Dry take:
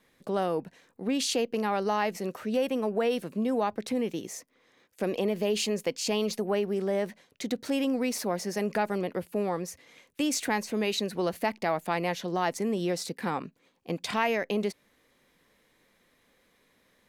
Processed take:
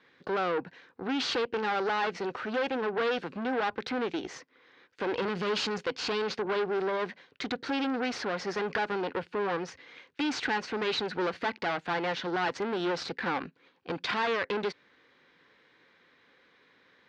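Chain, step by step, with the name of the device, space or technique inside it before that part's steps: 5.22–5.78 tone controls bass +7 dB, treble +9 dB; guitar amplifier (tube stage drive 33 dB, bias 0.7; tone controls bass -4 dB, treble -1 dB; speaker cabinet 100–4600 Hz, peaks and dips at 210 Hz -6 dB, 630 Hz -7 dB, 1500 Hz +6 dB); gain +8.5 dB

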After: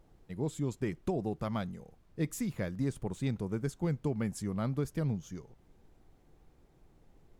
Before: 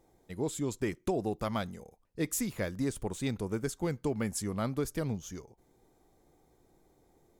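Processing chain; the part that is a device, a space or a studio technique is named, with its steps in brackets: car interior (bell 150 Hz +8 dB 0.98 oct; high shelf 4900 Hz -7 dB; brown noise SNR 25 dB); gain -3.5 dB

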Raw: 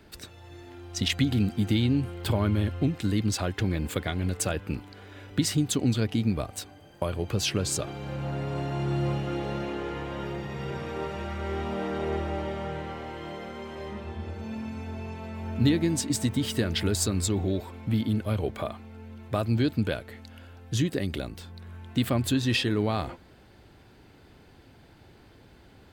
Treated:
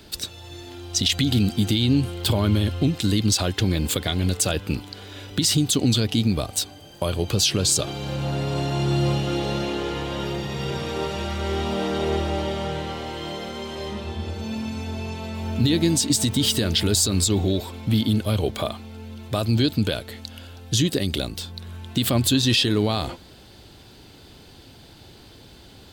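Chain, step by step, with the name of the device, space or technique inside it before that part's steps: over-bright horn tweeter (resonant high shelf 2700 Hz +7.5 dB, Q 1.5; limiter -16 dBFS, peak gain reduction 9 dB); gain +6 dB

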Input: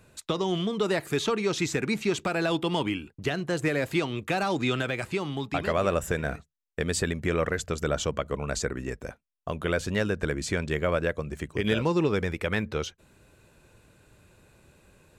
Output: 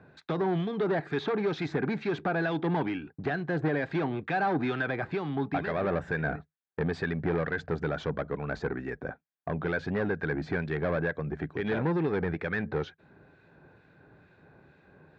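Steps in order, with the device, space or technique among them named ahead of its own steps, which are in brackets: guitar amplifier with harmonic tremolo (harmonic tremolo 2.2 Hz, depth 50%, crossover 1600 Hz; soft clip -28 dBFS, distortion -10 dB; speaker cabinet 78–3600 Hz, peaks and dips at 160 Hz +8 dB, 280 Hz +6 dB, 410 Hz +5 dB, 770 Hz +9 dB, 1600 Hz +9 dB, 2900 Hz -9 dB)

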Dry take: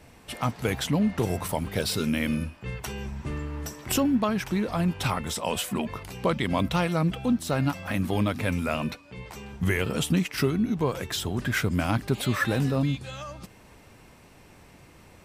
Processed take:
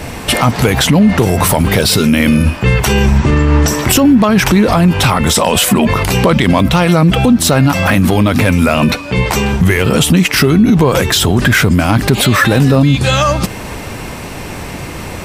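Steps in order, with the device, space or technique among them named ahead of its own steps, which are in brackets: loud club master (compressor 2:1, threshold -28 dBFS, peak gain reduction 5.5 dB; hard clip -20 dBFS, distortion -28 dB; maximiser +28.5 dB); 3.18–3.68 LPF 7800 Hz 24 dB/oct; gain -1 dB

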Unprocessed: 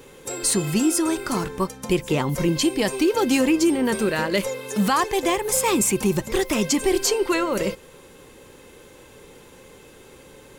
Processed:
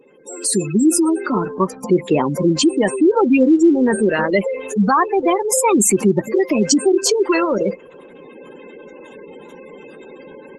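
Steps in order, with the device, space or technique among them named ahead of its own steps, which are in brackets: noise-suppressed video call (HPF 170 Hz 24 dB/oct; spectral gate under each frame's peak -15 dB strong; AGC gain up to 13 dB; gain -2.5 dB; Opus 24 kbps 48000 Hz)

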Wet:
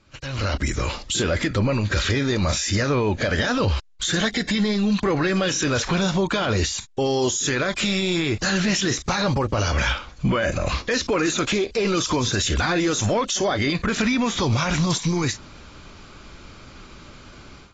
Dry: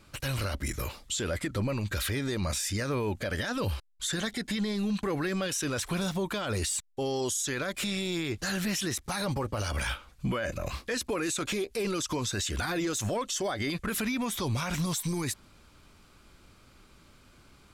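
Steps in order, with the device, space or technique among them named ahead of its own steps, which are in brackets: low-bitrate web radio (AGC gain up to 16 dB; limiter -12 dBFS, peak gain reduction 5.5 dB; gain -2.5 dB; AAC 24 kbps 16000 Hz)

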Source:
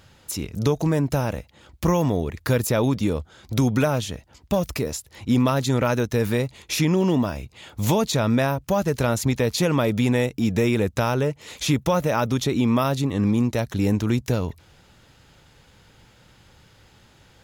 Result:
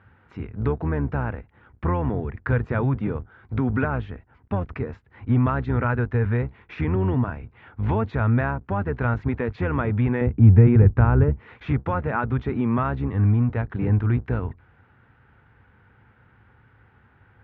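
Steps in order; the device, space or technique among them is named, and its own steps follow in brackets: sub-octave bass pedal (octaver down 1 oct, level -2 dB; speaker cabinet 71–2000 Hz, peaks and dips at 100 Hz +4 dB, 170 Hz -7 dB, 320 Hz -5 dB, 580 Hz -9 dB, 1500 Hz +5 dB); 10.21–11.4 tilt -3 dB/oct; gain -1.5 dB

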